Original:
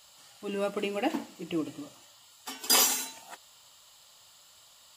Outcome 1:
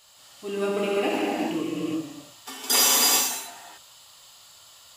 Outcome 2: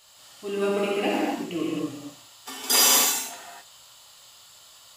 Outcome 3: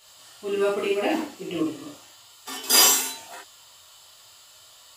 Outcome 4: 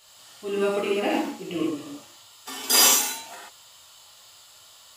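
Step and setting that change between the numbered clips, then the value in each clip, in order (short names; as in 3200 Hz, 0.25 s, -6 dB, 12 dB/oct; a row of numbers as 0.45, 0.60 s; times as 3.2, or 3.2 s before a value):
non-linear reverb, gate: 0.45, 0.29, 0.1, 0.16 s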